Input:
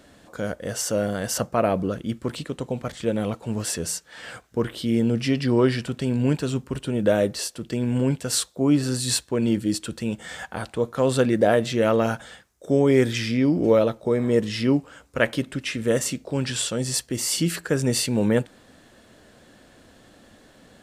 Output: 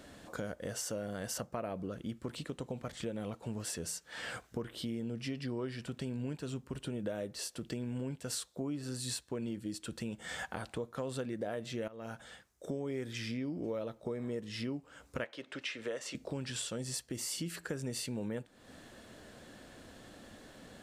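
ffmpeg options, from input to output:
-filter_complex "[0:a]asettb=1/sr,asplit=3[a][b][c];[a]atrim=end=15.244[d];[b]atrim=start=15.24:end=16.15,asetpts=PTS-STARTPTS,afade=t=in:d=0.004:c=qsin,afade=t=out:st=0.906:d=0.004:c=qsin,acrossover=split=380 6100:gain=0.112 1 0.141[e][f][g];[e][f][g]amix=inputs=3:normalize=0[h];[c]atrim=start=16.146[i];[d][h]acrossfade=d=0.004:c1=hsin:c2=qsin[j];[j][i]acrossfade=d=0.004:c1=qsin:c2=hsin,asplit=2[k][l];[k]atrim=end=11.88,asetpts=PTS-STARTPTS,afade=t=out:st=11.876:d=0.004:c=hsin:silence=0.112202[m];[l]atrim=start=11.88,asetpts=PTS-STARTPTS,afade=t=in:d=1.2:silence=0.112202[n];[m][n]concat=n=2:v=0:a=1,acompressor=threshold=-36dB:ratio=5,volume=-1.5dB"

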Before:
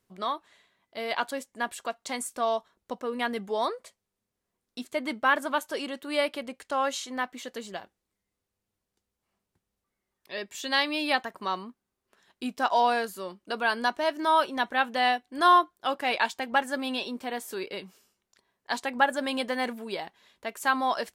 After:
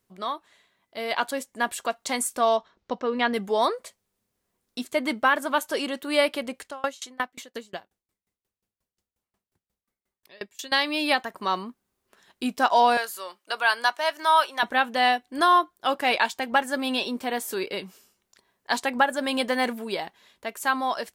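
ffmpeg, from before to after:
-filter_complex "[0:a]asettb=1/sr,asplit=3[a][b][c];[a]atrim=end=2.574[d];[b]atrim=start=2.57:end=3.34,asetpts=PTS-STARTPTS,afade=t=in:d=0.004:c=qsin,afade=t=out:st=0.766:d=0.004:c=qsin,lowpass=f=5.6k:w=0.5412,lowpass=f=5.6k:w=1.3066[e];[c]atrim=start=3.336[f];[d][e]acrossfade=d=0.004:c1=hsin:c2=qsin[g];[g][f]acrossfade=d=0.004:c1=qsin:c2=hsin,asettb=1/sr,asplit=3[h][i][j];[h]atrim=end=6.664[k];[i]atrim=start=6.66:end=10.72,asetpts=PTS-STARTPTS,afade=t=in:d=0.004:c=qsin,afade=t=out:st=4.056:d=0.004:c=qsin,aeval=exprs='val(0)*pow(10,-29*if(lt(mod(5.6*n/s,1),2*abs(5.6)/1000),1-mod(5.6*n/s,1)/(2*abs(5.6)/1000),(mod(5.6*n/s,1)-2*abs(5.6)/1000)/(1-2*abs(5.6)/1000))/20)':c=same[l];[j]atrim=start=10.716[m];[k][l]acrossfade=d=0.004:c1=hsin:c2=qsin[n];[n][m]acrossfade=d=0.004:c1=qsin:c2=hsin,asettb=1/sr,asplit=3[o][p][q];[o]atrim=end=12.974[r];[p]atrim=start=12.97:end=14.63,asetpts=PTS-STARTPTS,afade=t=in:d=0.004:c=qsin,afade=t=out:st=1.656:d=0.004:c=qsin,highpass=780[s];[q]atrim=start=14.626[t];[r][s]acrossfade=d=0.004:c1=hsin:c2=qsin[u];[u][t]acrossfade=d=0.004:c1=qsin:c2=hsin,dynaudnorm=f=220:g=11:m=5.5dB,alimiter=limit=-9dB:level=0:latency=1:release=426,highshelf=f=10k:g=5"

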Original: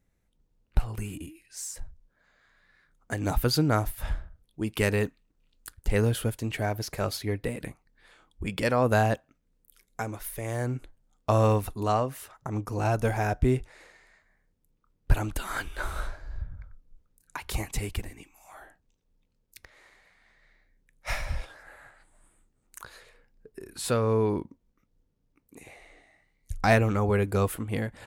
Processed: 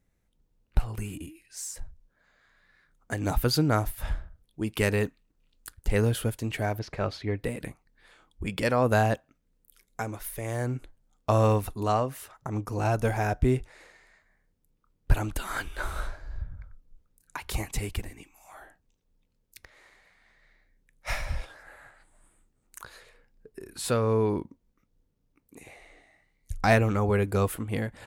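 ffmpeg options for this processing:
-filter_complex "[0:a]asettb=1/sr,asplit=3[a][b][c];[a]atrim=end=6.794[d];[b]atrim=start=6.79:end=7.39,asetpts=PTS-STARTPTS,afade=t=in:d=0.004:c=qsin,afade=t=out:st=0.596:d=0.004:c=qsin,lowpass=3.5k[e];[c]atrim=start=7.386[f];[d][e]acrossfade=d=0.004:c1=hsin:c2=qsin[g];[g][f]acrossfade=d=0.004:c1=qsin:c2=hsin"

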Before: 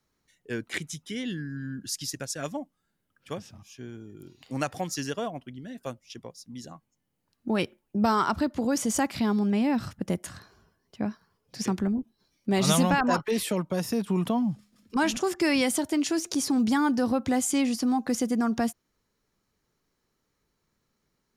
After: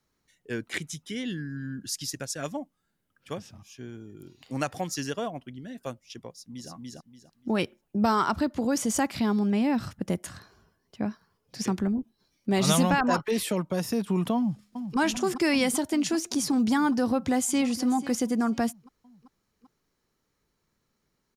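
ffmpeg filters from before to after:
-filter_complex "[0:a]asplit=2[a][b];[b]afade=t=in:st=6.3:d=0.01,afade=t=out:st=6.71:d=0.01,aecho=0:1:290|580|870|1160:0.944061|0.236015|0.0590038|0.014751[c];[a][c]amix=inputs=2:normalize=0,asplit=2[d][e];[e]afade=t=in:st=14.36:d=0.01,afade=t=out:st=14.98:d=0.01,aecho=0:1:390|780|1170|1560|1950|2340|2730|3120|3510|3900|4290|4680:0.375837|0.30067|0.240536|0.192429|0.153943|0.123154|0.0985235|0.0788188|0.0630551|0.050444|0.0403552|0.0322842[f];[d][f]amix=inputs=2:normalize=0,asplit=2[g][h];[h]afade=t=in:st=17.05:d=0.01,afade=t=out:st=17.64:d=0.01,aecho=0:1:490|980:0.16788|0.0335761[i];[g][i]amix=inputs=2:normalize=0"

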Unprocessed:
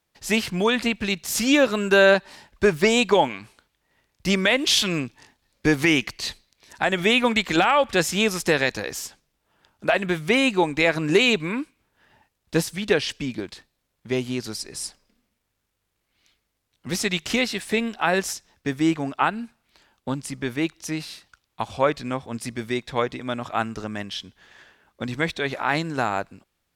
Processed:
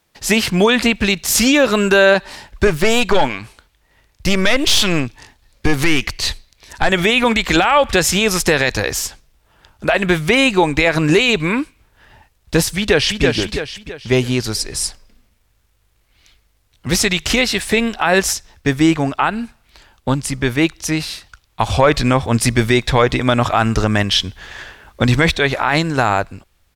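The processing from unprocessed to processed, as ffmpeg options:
-filter_complex "[0:a]asettb=1/sr,asplit=3[a][b][c];[a]atrim=end=2.674[d];[b]atrim=start=2.67:end=6.89,asetpts=PTS-STARTPTS,afade=t=in:d=0.004:c=qsin,afade=t=out:st=4.216:d=0.004:c=qsin,aeval=exprs='(tanh(5.62*val(0)+0.4)-tanh(0.4))/5.62':c=same[e];[c]atrim=start=6.886[f];[d][e]acrossfade=d=0.004:c1=hsin:c2=qsin[g];[g][f]acrossfade=d=0.004:c1=qsin:c2=hsin,asplit=2[h][i];[i]afade=t=in:st=12.77:d=0.01,afade=t=out:st=13.23:d=0.01,aecho=0:1:330|660|990|1320|1650:0.530884|0.212354|0.0849415|0.0339766|0.0135906[j];[h][j]amix=inputs=2:normalize=0,asettb=1/sr,asplit=3[k][l][m];[k]atrim=end=21.614[n];[l]atrim=start=21.61:end=25.36,asetpts=PTS-STARTPTS,afade=t=in:d=0.004:c=qsin,afade=t=out:st=3.746:d=0.004:c=qsin,acontrast=50[o];[m]atrim=start=25.356[p];[n][o]acrossfade=d=0.004:c1=hsin:c2=qsin[q];[q][p]acrossfade=d=0.004:c1=qsin:c2=hsin,asubboost=boost=4:cutoff=92,alimiter=level_in=13.5dB:limit=-1dB:release=50:level=0:latency=1,volume=-2.5dB"

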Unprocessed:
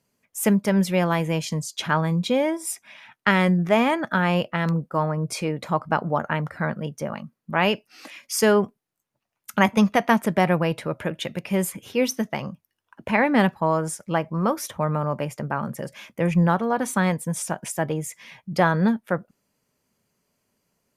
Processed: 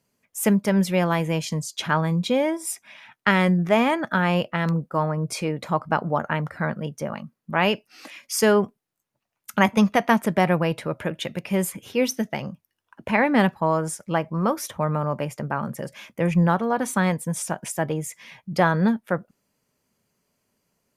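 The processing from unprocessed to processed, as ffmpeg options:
-filter_complex "[0:a]asettb=1/sr,asplit=3[a][b][c];[a]atrim=end=12.114[d];[b]atrim=start=12.11:end=12.51,asetpts=PTS-STARTPTS,afade=t=in:d=0.004:c=qsin,afade=t=out:st=0.396:d=0.004:c=qsin,equalizer=f=1.1k:t=o:w=0.31:g=-8.5[e];[c]atrim=start=12.506[f];[d][e]acrossfade=d=0.004:c1=hsin:c2=qsin[g];[g][f]acrossfade=d=0.004:c1=qsin:c2=hsin"

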